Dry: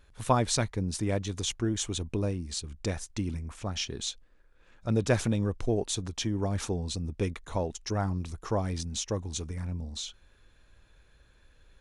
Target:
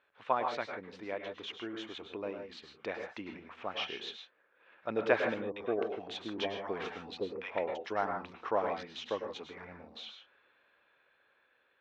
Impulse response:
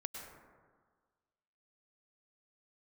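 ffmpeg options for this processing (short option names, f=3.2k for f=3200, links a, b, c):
-filter_complex "[0:a]lowpass=f=3k:w=0.5412,lowpass=f=3k:w=1.3066,asettb=1/sr,asplit=3[a][b][c];[a]atrim=end=5.344[d];[b]atrim=start=5.34:end=7.67,asetpts=PTS-STARTPTS,afade=t=in:d=0.004:c=qsin,afade=t=out:st=2.326:d=0.004:c=qsin,acrossover=split=870[e][f];[f]adelay=220[g];[e][g]amix=inputs=2:normalize=0,atrim=end_sample=102753[h];[c]atrim=start=7.666[i];[d][h]acrossfade=d=0.004:c1=hsin:c2=qsin[j];[j][i]acrossfade=d=0.004:c1=qsin:c2=hsin[k];[1:a]atrim=start_sample=2205,afade=t=out:st=0.21:d=0.01,atrim=end_sample=9702[l];[k][l]afir=irnorm=-1:irlink=0,dynaudnorm=f=780:g=7:m=6dB,highpass=520"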